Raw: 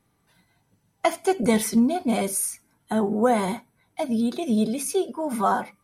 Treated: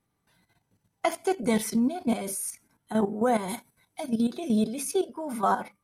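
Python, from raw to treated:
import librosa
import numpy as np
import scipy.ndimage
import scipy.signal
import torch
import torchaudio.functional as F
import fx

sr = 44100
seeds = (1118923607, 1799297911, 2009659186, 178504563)

y = fx.level_steps(x, sr, step_db=11)
y = fx.peak_eq(y, sr, hz=11000.0, db=fx.line((3.48, 14.0), (4.08, 6.5)), octaves=2.5, at=(3.48, 4.08), fade=0.02)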